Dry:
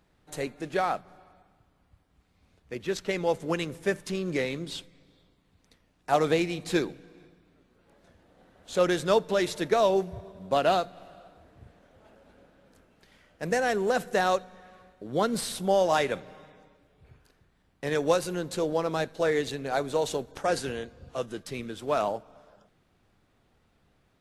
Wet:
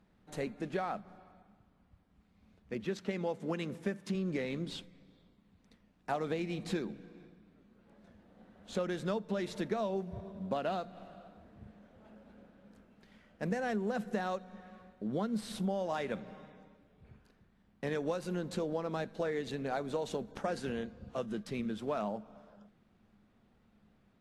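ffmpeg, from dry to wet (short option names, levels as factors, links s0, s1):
-filter_complex "[0:a]asettb=1/sr,asplit=3[s0][s1][s2];[s0]atrim=end=2.854[s3];[s1]atrim=start=2.85:end=4.15,asetpts=PTS-STARTPTS,afade=t=in:d=0.004:c=qsin,afade=t=out:st=1.296:d=0.004:c=qsin,highpass=110[s4];[s2]atrim=start=4.146[s5];[s3][s4]acrossfade=d=0.004:c1=hsin:c2=qsin[s6];[s6][s5]acrossfade=d=0.004:c1=qsin:c2=hsin,equalizer=f=210:w=4.7:g=14,acompressor=threshold=0.0398:ratio=6,aemphasis=mode=reproduction:type=cd,volume=0.668"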